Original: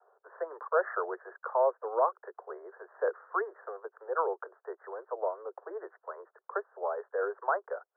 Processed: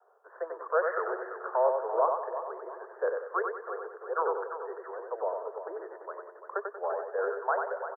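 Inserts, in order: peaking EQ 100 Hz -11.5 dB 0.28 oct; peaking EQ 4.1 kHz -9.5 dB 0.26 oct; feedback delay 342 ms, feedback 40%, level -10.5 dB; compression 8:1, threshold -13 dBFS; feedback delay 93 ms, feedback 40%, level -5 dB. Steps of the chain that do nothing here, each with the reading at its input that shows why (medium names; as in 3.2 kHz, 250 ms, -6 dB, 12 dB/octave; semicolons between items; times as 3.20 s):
peaking EQ 100 Hz: input has nothing below 320 Hz; peaking EQ 4.1 kHz: input has nothing above 1.8 kHz; compression, threshold -13 dBFS: peak at its input -14.5 dBFS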